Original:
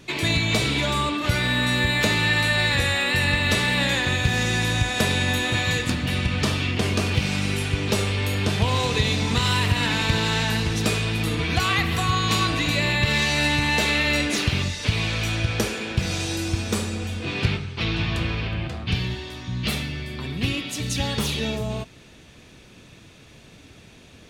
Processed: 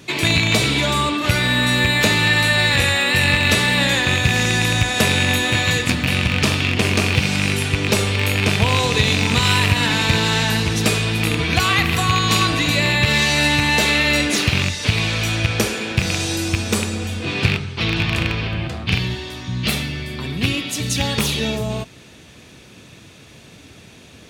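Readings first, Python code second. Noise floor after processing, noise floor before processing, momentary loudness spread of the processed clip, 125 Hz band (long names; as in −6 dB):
−44 dBFS, −49 dBFS, 7 LU, +4.0 dB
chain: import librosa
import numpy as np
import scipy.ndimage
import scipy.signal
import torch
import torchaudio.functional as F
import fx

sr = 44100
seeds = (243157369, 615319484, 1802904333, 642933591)

y = fx.rattle_buzz(x, sr, strikes_db=-21.0, level_db=-12.0)
y = scipy.signal.sosfilt(scipy.signal.butter(2, 65.0, 'highpass', fs=sr, output='sos'), y)
y = fx.high_shelf(y, sr, hz=7000.0, db=4.0)
y = F.gain(torch.from_numpy(y), 4.5).numpy()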